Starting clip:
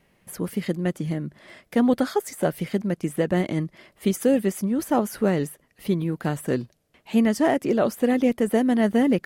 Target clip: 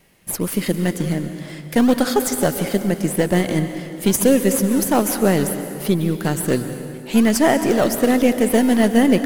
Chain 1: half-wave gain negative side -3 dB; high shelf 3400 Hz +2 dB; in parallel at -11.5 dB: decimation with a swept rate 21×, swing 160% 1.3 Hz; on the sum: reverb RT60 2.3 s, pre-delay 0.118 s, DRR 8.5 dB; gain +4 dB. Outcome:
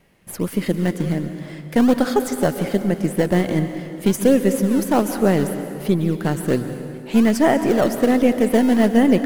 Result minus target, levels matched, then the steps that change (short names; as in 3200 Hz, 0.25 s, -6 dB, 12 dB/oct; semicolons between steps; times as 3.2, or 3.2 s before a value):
8000 Hz band -8.0 dB
change: high shelf 3400 Hz +12 dB